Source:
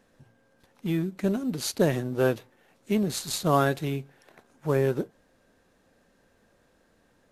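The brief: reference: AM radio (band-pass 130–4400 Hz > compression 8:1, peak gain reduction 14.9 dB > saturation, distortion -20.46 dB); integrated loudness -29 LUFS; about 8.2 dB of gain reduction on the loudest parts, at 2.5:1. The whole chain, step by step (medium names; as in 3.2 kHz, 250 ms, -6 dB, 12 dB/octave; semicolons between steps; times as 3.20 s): compression 2.5:1, threshold -30 dBFS; band-pass 130–4400 Hz; compression 8:1, threshold -40 dBFS; saturation -34 dBFS; trim +17.5 dB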